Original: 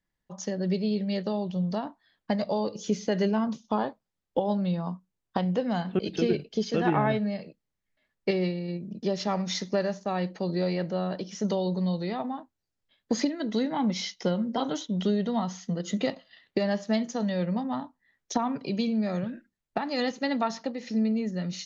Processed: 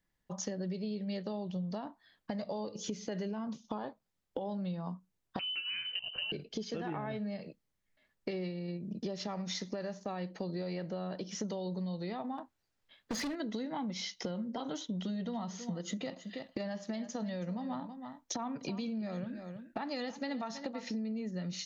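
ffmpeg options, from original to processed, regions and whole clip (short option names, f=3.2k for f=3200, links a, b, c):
-filter_complex "[0:a]asettb=1/sr,asplit=3[a][b][c];[a]atrim=end=5.394[d];[b]atrim=start=5.39:end=6.32,asetpts=PTS-STARTPTS,afade=t=in:d=0.004:c=qsin,afade=t=out:st=0.926:d=0.004:c=qsin,lowpass=f=2.7k:t=q:w=0.5098,lowpass=f=2.7k:t=q:w=0.6013,lowpass=f=2.7k:t=q:w=0.9,lowpass=f=2.7k:t=q:w=2.563,afreqshift=-3200,acompressor=threshold=-36dB:ratio=1.5:attack=3.2:release=140:knee=1:detection=peak[e];[c]atrim=start=6.316[f];[d][e]acrossfade=d=0.004:c1=hsin:c2=qsin[g];[g][f]acrossfade=d=0.004:c1=qsin:c2=hsin,asettb=1/sr,asplit=3[h][i][j];[h]atrim=end=12.384[k];[i]atrim=start=12.38:end=13.36,asetpts=PTS-STARTPTS,afade=t=in:d=0.004:c=qsin,afade=t=out:st=0.976:d=0.004:c=qsin,equalizer=f=1.5k:w=0.35:g=6,asoftclip=type=hard:threshold=-28.5dB[l];[j]atrim=start=13.356[m];[k][l]acrossfade=d=0.004:c1=hsin:c2=qsin[n];[n][m]acrossfade=d=0.004:c1=qsin:c2=hsin,asettb=1/sr,asplit=3[o][p][q];[o]atrim=end=14.924[r];[p]atrim=start=14.92:end=20.91,asetpts=PTS-STARTPTS,afade=t=in:d=0.004:c=qsin,afade=t=out:st=5.986:d=0.004:c=qsin,bandreject=f=410:w=9.9,aecho=1:1:325:0.158,atrim=end_sample=264159[s];[q]atrim=start=20.906[t];[r][s]acrossfade=d=0.004:c1=hsin:c2=qsin[u];[u][t]acrossfade=d=0.004:c1=qsin:c2=hsin,alimiter=limit=-20dB:level=0:latency=1:release=36,acompressor=threshold=-37dB:ratio=6,volume=1.5dB"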